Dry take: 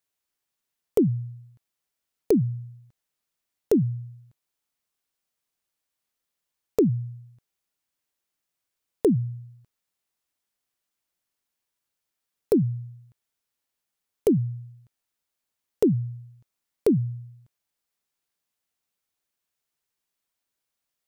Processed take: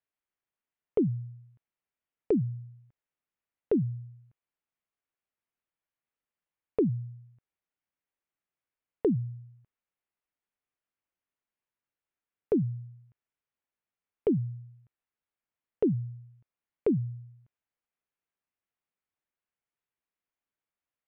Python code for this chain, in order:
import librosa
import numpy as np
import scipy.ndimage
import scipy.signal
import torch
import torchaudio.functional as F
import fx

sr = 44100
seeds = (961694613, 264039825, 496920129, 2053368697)

y = scipy.signal.sosfilt(scipy.signal.butter(4, 2700.0, 'lowpass', fs=sr, output='sos'), x)
y = y * librosa.db_to_amplitude(-5.5)